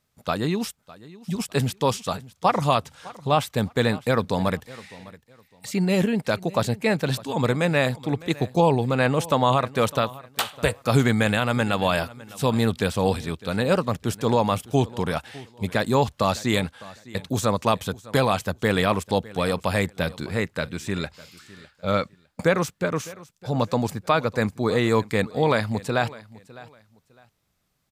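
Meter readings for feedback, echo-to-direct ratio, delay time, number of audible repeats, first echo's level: 25%, −19.5 dB, 606 ms, 2, −20.0 dB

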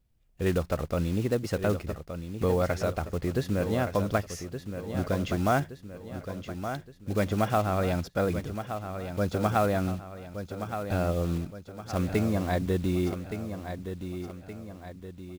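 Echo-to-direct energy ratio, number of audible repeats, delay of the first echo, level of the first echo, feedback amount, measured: −8.0 dB, 4, 1,170 ms, −9.0 dB, 47%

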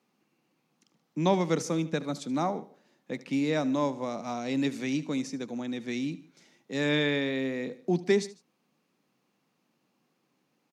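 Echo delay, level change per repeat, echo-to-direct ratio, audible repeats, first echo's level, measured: 75 ms, −6.0 dB, −17.0 dB, 2, −18.0 dB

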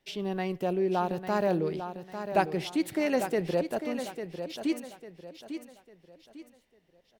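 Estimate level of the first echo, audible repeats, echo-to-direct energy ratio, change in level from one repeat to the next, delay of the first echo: −9.0 dB, 3, −8.5 dB, −9.0 dB, 849 ms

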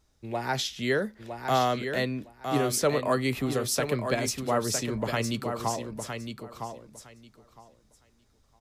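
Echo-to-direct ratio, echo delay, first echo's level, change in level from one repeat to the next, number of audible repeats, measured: −7.0 dB, 960 ms, −7.0 dB, −15.5 dB, 2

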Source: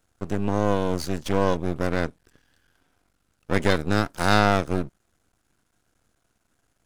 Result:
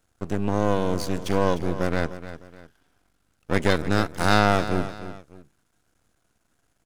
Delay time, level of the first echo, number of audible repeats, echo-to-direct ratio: 302 ms, −13.0 dB, 2, −12.5 dB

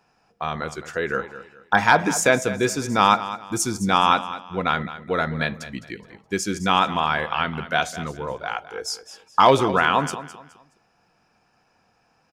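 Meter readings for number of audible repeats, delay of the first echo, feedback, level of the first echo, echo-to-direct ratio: 3, 210 ms, 31%, −14.0 dB, −13.5 dB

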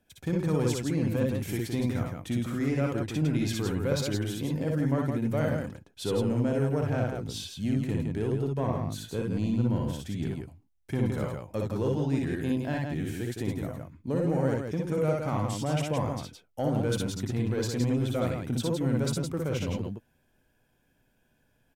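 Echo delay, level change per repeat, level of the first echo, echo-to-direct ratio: 58 ms, repeats not evenly spaced, −3.0 dB, 0.5 dB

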